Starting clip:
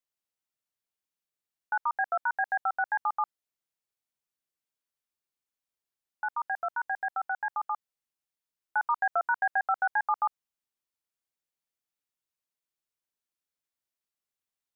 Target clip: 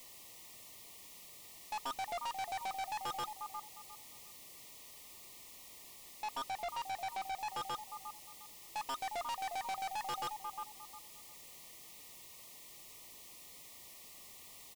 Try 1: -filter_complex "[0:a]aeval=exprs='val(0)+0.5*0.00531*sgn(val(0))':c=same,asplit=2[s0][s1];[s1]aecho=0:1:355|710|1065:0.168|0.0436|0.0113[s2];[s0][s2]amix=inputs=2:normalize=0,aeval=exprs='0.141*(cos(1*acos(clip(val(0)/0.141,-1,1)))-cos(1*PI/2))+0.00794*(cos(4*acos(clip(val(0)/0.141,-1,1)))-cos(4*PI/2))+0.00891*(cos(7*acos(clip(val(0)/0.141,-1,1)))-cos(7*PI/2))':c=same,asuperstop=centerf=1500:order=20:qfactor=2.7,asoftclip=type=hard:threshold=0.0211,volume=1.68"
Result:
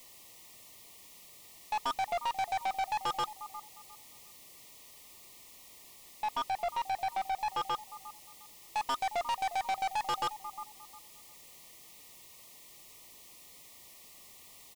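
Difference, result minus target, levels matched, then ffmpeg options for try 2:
hard clipper: distortion -4 dB
-filter_complex "[0:a]aeval=exprs='val(0)+0.5*0.00531*sgn(val(0))':c=same,asplit=2[s0][s1];[s1]aecho=0:1:355|710|1065:0.168|0.0436|0.0113[s2];[s0][s2]amix=inputs=2:normalize=0,aeval=exprs='0.141*(cos(1*acos(clip(val(0)/0.141,-1,1)))-cos(1*PI/2))+0.00794*(cos(4*acos(clip(val(0)/0.141,-1,1)))-cos(4*PI/2))+0.00891*(cos(7*acos(clip(val(0)/0.141,-1,1)))-cos(7*PI/2))':c=same,asuperstop=centerf=1500:order=20:qfactor=2.7,asoftclip=type=hard:threshold=0.00841,volume=1.68"

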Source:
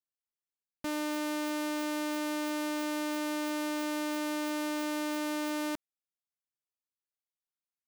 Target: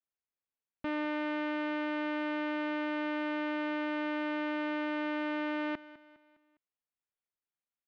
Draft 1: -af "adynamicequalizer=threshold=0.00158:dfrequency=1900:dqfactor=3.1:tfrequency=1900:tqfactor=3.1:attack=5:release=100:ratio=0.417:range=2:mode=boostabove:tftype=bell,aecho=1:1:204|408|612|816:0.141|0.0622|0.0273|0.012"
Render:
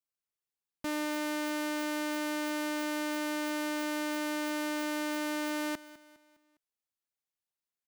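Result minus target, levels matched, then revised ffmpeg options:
4 kHz band +5.5 dB
-af "adynamicequalizer=threshold=0.00158:dfrequency=1900:dqfactor=3.1:tfrequency=1900:tqfactor=3.1:attack=5:release=100:ratio=0.417:range=2:mode=boostabove:tftype=bell,lowpass=f=3000:w=0.5412,lowpass=f=3000:w=1.3066,aecho=1:1:204|408|612|816:0.141|0.0622|0.0273|0.012"

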